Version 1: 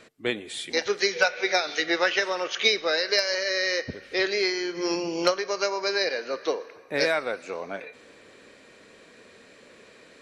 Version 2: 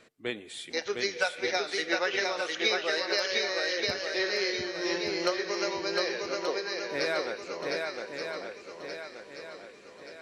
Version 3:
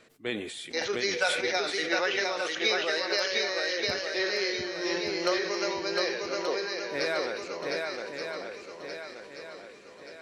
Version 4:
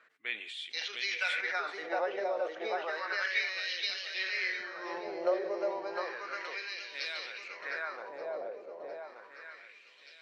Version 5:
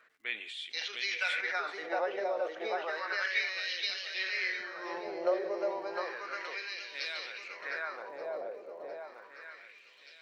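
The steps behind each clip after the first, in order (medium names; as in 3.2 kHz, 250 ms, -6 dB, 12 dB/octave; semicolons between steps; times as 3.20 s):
shuffle delay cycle 1178 ms, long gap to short 1.5:1, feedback 42%, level -3.5 dB; trim -6.5 dB
decay stretcher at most 49 dB/s
wah-wah 0.32 Hz 600–3200 Hz, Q 2.5; trim +2.5 dB
crackle 88 per s -62 dBFS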